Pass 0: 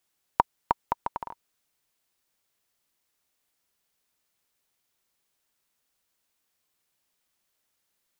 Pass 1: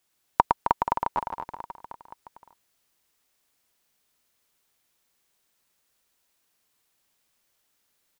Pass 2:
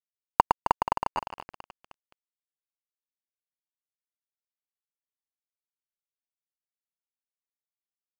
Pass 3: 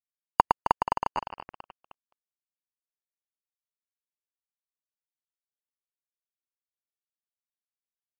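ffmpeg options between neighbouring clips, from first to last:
-af "aecho=1:1:110|264|479.6|781.4|1204:0.631|0.398|0.251|0.158|0.1,volume=1.33"
-af "aeval=exprs='sgn(val(0))*max(abs(val(0))-0.0282,0)':c=same"
-af "afftdn=nr=16:nf=-55"

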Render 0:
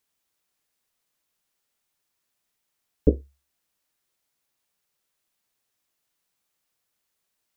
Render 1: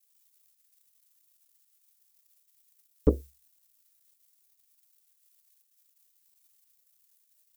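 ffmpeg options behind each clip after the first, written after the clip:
-af "crystalizer=i=8.5:c=0,asoftclip=type=tanh:threshold=0.501,anlmdn=0.000631,volume=0.75"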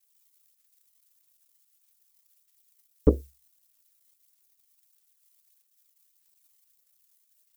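-af "aphaser=in_gain=1:out_gain=1:delay=1:decay=0.28:speed=1.6:type=sinusoidal"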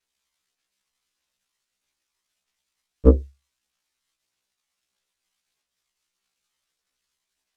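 -af "adynamicsmooth=sensitivity=6:basefreq=4100,afftfilt=real='re*1.73*eq(mod(b,3),0)':imag='im*1.73*eq(mod(b,3),0)':win_size=2048:overlap=0.75,volume=2.51"

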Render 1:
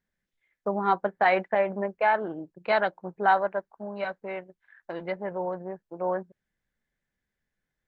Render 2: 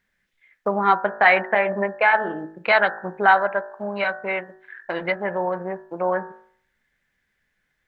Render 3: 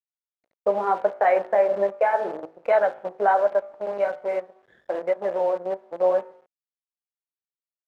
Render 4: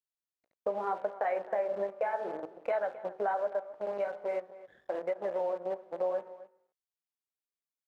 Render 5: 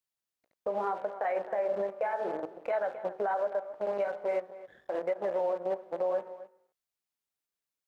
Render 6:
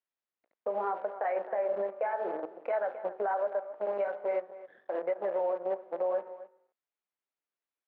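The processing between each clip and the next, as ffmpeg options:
-filter_complex "[0:a]equalizer=f=2000:t=o:w=2:g=9.5,bandreject=f=53.67:t=h:w=4,bandreject=f=107.34:t=h:w=4,bandreject=f=161.01:t=h:w=4,bandreject=f=214.68:t=h:w=4,bandreject=f=268.35:t=h:w=4,bandreject=f=322.02:t=h:w=4,bandreject=f=375.69:t=h:w=4,bandreject=f=429.36:t=h:w=4,bandreject=f=483.03:t=h:w=4,bandreject=f=536.7:t=h:w=4,bandreject=f=590.37:t=h:w=4,bandreject=f=644.04:t=h:w=4,bandreject=f=697.71:t=h:w=4,bandreject=f=751.38:t=h:w=4,bandreject=f=805.05:t=h:w=4,bandreject=f=858.72:t=h:w=4,bandreject=f=912.39:t=h:w=4,bandreject=f=966.06:t=h:w=4,bandreject=f=1019.73:t=h:w=4,bandreject=f=1073.4:t=h:w=4,bandreject=f=1127.07:t=h:w=4,bandreject=f=1180.74:t=h:w=4,bandreject=f=1234.41:t=h:w=4,bandreject=f=1288.08:t=h:w=4,bandreject=f=1341.75:t=h:w=4,bandreject=f=1395.42:t=h:w=4,bandreject=f=1449.09:t=h:w=4,bandreject=f=1502.76:t=h:w=4,bandreject=f=1556.43:t=h:w=4,bandreject=f=1610.1:t=h:w=4,bandreject=f=1663.77:t=h:w=4,bandreject=f=1717.44:t=h:w=4,bandreject=f=1771.11:t=h:w=4,bandreject=f=1824.78:t=h:w=4,bandreject=f=1878.45:t=h:w=4,asplit=2[s0][s1];[s1]acompressor=threshold=0.0355:ratio=6,volume=1.19[s2];[s0][s2]amix=inputs=2:normalize=0"
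-af "flanger=delay=1.5:depth=9.4:regen=-49:speed=0.79:shape=triangular,acrusher=bits=6:dc=4:mix=0:aa=0.000001,bandpass=f=550:t=q:w=2.6:csg=0,volume=2.51"
-filter_complex "[0:a]acompressor=threshold=0.0447:ratio=2.5,asplit=2[s0][s1];[s1]adelay=262.4,volume=0.141,highshelf=f=4000:g=-5.9[s2];[s0][s2]amix=inputs=2:normalize=0,volume=0.596"
-af "alimiter=level_in=1.26:limit=0.0631:level=0:latency=1:release=57,volume=0.794,volume=1.5"
-af "highpass=270,lowpass=2400"

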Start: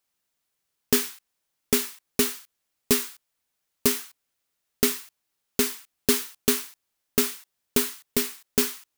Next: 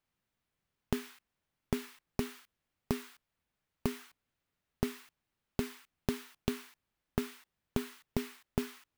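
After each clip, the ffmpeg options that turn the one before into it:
-af "bass=f=250:g=10,treble=f=4000:g=-12,acompressor=threshold=0.0447:ratio=10,volume=0.794"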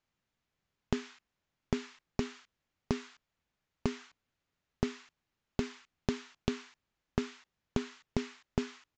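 -af "aresample=16000,aresample=44100,volume=1.12"

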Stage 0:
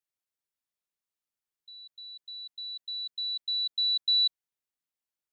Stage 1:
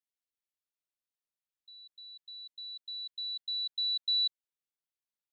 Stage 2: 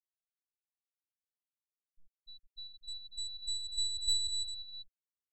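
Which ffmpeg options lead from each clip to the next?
-af "equalizer=f=3700:w=1.5:g=4,volume=0.376"
-filter_complex "[0:a]asplit=2[s0][s1];[s1]aecho=0:1:200|350|462.5|546.9|610.2:0.631|0.398|0.251|0.158|0.1[s2];[s0][s2]amix=inputs=2:normalize=0,aeval=exprs='max(val(0),0)':c=same,afftfilt=real='re*gte(hypot(re,im),0.0355)':imag='im*gte(hypot(re,im),0.0355)':win_size=1024:overlap=0.75"

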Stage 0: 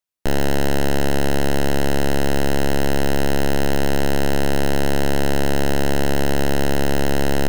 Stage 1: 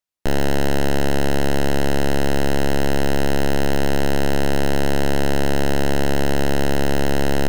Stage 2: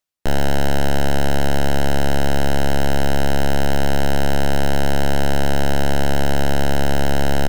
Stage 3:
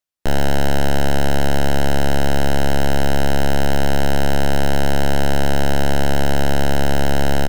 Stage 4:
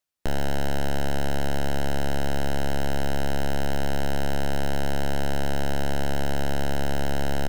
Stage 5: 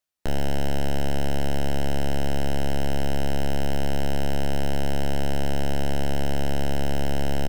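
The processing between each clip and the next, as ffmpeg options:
-af "highshelf=f=9500:g=-4"
-filter_complex "[0:a]areverse,acompressor=mode=upward:threshold=0.0708:ratio=2.5,areverse,asplit=2[s0][s1];[s1]adelay=13,volume=0.422[s2];[s0][s2]amix=inputs=2:normalize=0"
-af "dynaudnorm=f=120:g=3:m=1.78,volume=0.631"
-af "alimiter=limit=0.0891:level=0:latency=1,volume=1.19"
-filter_complex "[0:a]asplit=2[s0][s1];[s1]adelay=29,volume=0.376[s2];[s0][s2]amix=inputs=2:normalize=0,volume=0.891"

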